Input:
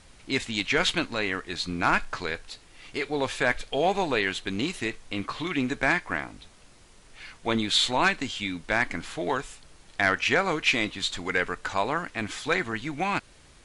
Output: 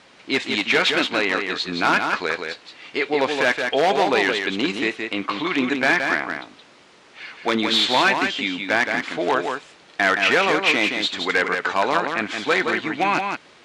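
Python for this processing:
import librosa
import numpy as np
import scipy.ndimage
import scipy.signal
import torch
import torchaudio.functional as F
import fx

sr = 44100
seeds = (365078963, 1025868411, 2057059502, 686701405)

p1 = (np.mod(10.0 ** (17.0 / 20.0) * x + 1.0, 2.0) - 1.0) / 10.0 ** (17.0 / 20.0)
p2 = x + (p1 * librosa.db_to_amplitude(-3.5))
p3 = fx.bandpass_edges(p2, sr, low_hz=270.0, high_hz=4200.0)
p4 = p3 + 10.0 ** (-5.5 / 20.0) * np.pad(p3, (int(171 * sr / 1000.0), 0))[:len(p3)]
y = p4 * librosa.db_to_amplitude(3.5)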